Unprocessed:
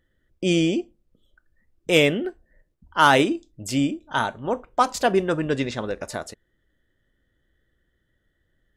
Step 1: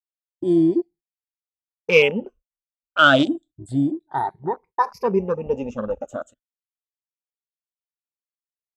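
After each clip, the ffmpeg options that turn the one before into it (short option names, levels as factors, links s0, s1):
-af "afftfilt=real='re*pow(10,23/40*sin(2*PI*(0.83*log(max(b,1)*sr/1024/100)/log(2)-(0.3)*(pts-256)/sr)))':imag='im*pow(10,23/40*sin(2*PI*(0.83*log(max(b,1)*sr/1024/100)/log(2)-(0.3)*(pts-256)/sr)))':win_size=1024:overlap=0.75,agate=range=0.01:threshold=0.0126:ratio=16:detection=peak,afwtdn=0.0794,volume=0.562"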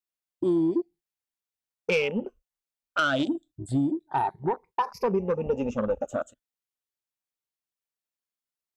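-af "acompressor=threshold=0.0891:ratio=10,asoftclip=type=tanh:threshold=0.141,volume=1.19"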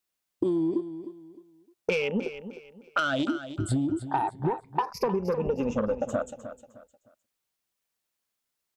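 -filter_complex "[0:a]acompressor=threshold=0.0224:ratio=10,asplit=2[s0][s1];[s1]aecho=0:1:307|614|921:0.251|0.0754|0.0226[s2];[s0][s2]amix=inputs=2:normalize=0,volume=2.82"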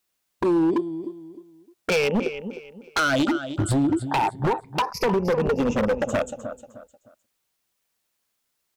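-af "aeval=exprs='0.0708*(abs(mod(val(0)/0.0708+3,4)-2)-1)':c=same,volume=2.24"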